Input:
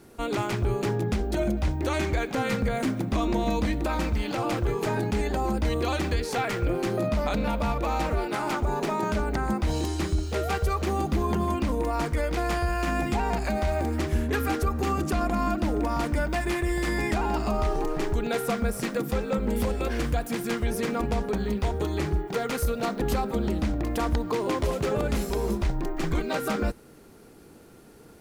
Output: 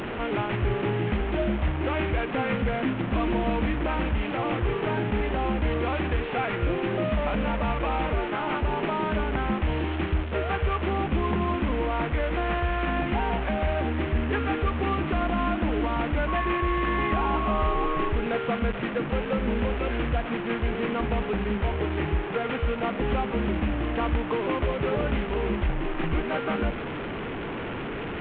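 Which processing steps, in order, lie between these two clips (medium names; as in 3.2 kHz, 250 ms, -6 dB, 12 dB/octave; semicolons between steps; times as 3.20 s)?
one-bit delta coder 16 kbps, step -26.5 dBFS; 16.27–18.08 s: whistle 1.1 kHz -28 dBFS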